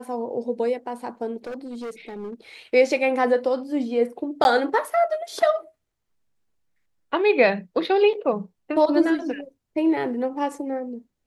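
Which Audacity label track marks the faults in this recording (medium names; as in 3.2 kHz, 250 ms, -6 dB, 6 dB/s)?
1.440000	2.340000	clipped -29.5 dBFS
4.440000	4.450000	dropout 11 ms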